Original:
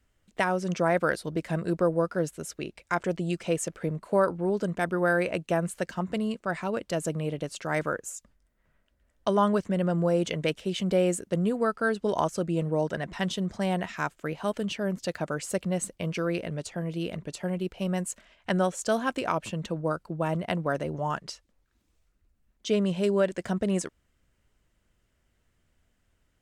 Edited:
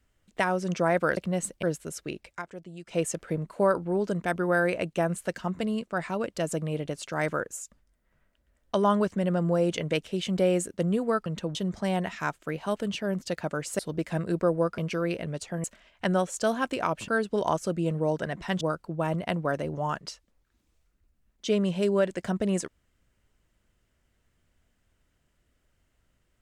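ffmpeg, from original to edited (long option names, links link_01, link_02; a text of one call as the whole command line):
ffmpeg -i in.wav -filter_complex "[0:a]asplit=12[link_01][link_02][link_03][link_04][link_05][link_06][link_07][link_08][link_09][link_10][link_11][link_12];[link_01]atrim=end=1.172[link_13];[link_02]atrim=start=15.558:end=16.022[link_14];[link_03]atrim=start=2.158:end=2.96,asetpts=PTS-STARTPTS,afade=type=out:start_time=0.672:duration=0.13:silence=0.211349[link_15];[link_04]atrim=start=2.96:end=3.38,asetpts=PTS-STARTPTS,volume=-13.5dB[link_16];[link_05]atrim=start=3.38:end=11.792,asetpts=PTS-STARTPTS,afade=type=in:duration=0.13:silence=0.211349[link_17];[link_06]atrim=start=19.528:end=19.822[link_18];[link_07]atrim=start=13.318:end=15.562[link_19];[link_08]atrim=start=1.168:end=2.162[link_20];[link_09]atrim=start=16.018:end=16.882[link_21];[link_10]atrim=start=18.088:end=19.532[link_22];[link_11]atrim=start=11.788:end=13.322[link_23];[link_12]atrim=start=19.818[link_24];[link_13][link_14]acrossfade=duration=0.004:curve1=hsin:curve2=hsin[link_25];[link_15][link_16][link_17]concat=n=3:v=0:a=1[link_26];[link_25][link_26]acrossfade=duration=0.004:curve1=hsin:curve2=hsin[link_27];[link_27][link_18]acrossfade=duration=0.004:curve1=hsin:curve2=hsin[link_28];[link_28][link_19]acrossfade=duration=0.004:curve1=hsin:curve2=hsin[link_29];[link_29][link_20]acrossfade=duration=0.004:curve1=hsin:curve2=hsin[link_30];[link_30][link_21]acrossfade=duration=0.004:curve1=hsin:curve2=hsin[link_31];[link_31][link_22]acrossfade=duration=0.004:curve1=hsin:curve2=hsin[link_32];[link_32][link_23]acrossfade=duration=0.004:curve1=hsin:curve2=hsin[link_33];[link_33][link_24]acrossfade=duration=0.004:curve1=hsin:curve2=hsin" out.wav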